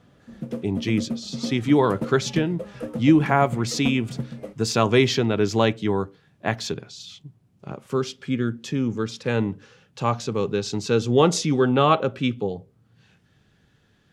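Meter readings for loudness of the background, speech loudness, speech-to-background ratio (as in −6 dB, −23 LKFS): −33.5 LKFS, −23.0 LKFS, 10.5 dB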